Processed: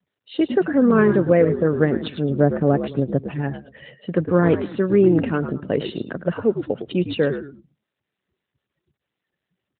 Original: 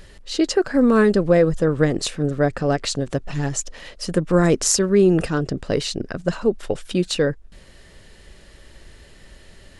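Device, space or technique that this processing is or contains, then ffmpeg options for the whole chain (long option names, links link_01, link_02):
mobile call with aggressive noise cancelling: -filter_complex "[0:a]agate=range=-33dB:threshold=-38dB:ratio=3:detection=peak,asettb=1/sr,asplit=3[link_01][link_02][link_03];[link_01]atrim=end=2.294[link_04];[link_02]atrim=start=2.29:end=3.22,asetpts=PTS-STARTPTS,afade=type=in:duration=0.004:curve=qsin,afade=type=out:start_time=0.926:duration=0.004:curve=qsin,tiltshelf=frequency=730:gain=5.5[link_05];[link_03]atrim=start=3.216[link_06];[link_04][link_05]acrossfade=duration=0.004:curve1=hsin:curve2=qsin[link_07];[link_07][link_06]acrossfade=duration=0.004:curve1=qsin:curve2=hsin,asplit=5[link_08][link_09][link_10][link_11][link_12];[link_09]adelay=107,afreqshift=-74,volume=-8.5dB[link_13];[link_10]adelay=214,afreqshift=-148,volume=-17.6dB[link_14];[link_11]adelay=321,afreqshift=-222,volume=-26.7dB[link_15];[link_12]adelay=428,afreqshift=-296,volume=-35.9dB[link_16];[link_08][link_13][link_14][link_15][link_16]amix=inputs=5:normalize=0,highpass=120,afftdn=noise_reduction=35:noise_floor=-40" -ar 8000 -c:a libopencore_amrnb -b:a 12200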